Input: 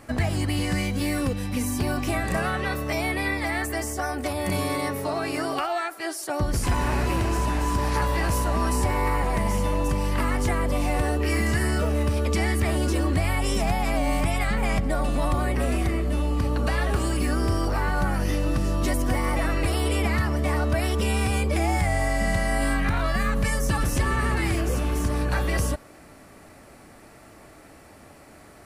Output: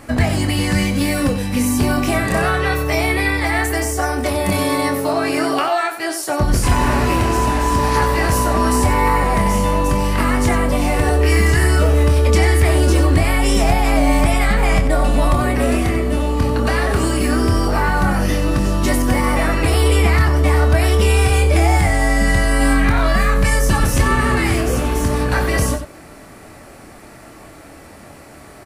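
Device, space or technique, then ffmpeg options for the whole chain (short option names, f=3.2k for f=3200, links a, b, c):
slapback doubling: -filter_complex "[0:a]asplit=3[a][b][c];[b]adelay=25,volume=-7dB[d];[c]adelay=93,volume=-10dB[e];[a][d][e]amix=inputs=3:normalize=0,volume=7.5dB"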